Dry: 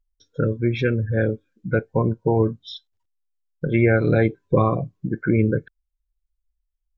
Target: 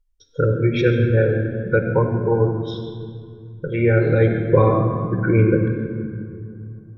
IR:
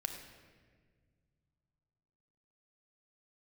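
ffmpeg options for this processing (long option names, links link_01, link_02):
-filter_complex "[0:a]asplit=3[link_01][link_02][link_03];[link_01]afade=type=out:start_time=2.03:duration=0.02[link_04];[link_02]flanger=delay=5.4:depth=7.9:regen=59:speed=1.2:shape=triangular,afade=type=in:start_time=2.03:duration=0.02,afade=type=out:start_time=4.2:duration=0.02[link_05];[link_03]afade=type=in:start_time=4.2:duration=0.02[link_06];[link_04][link_05][link_06]amix=inputs=3:normalize=0[link_07];[1:a]atrim=start_sample=2205,asetrate=29106,aresample=44100[link_08];[link_07][link_08]afir=irnorm=-1:irlink=0,volume=1dB"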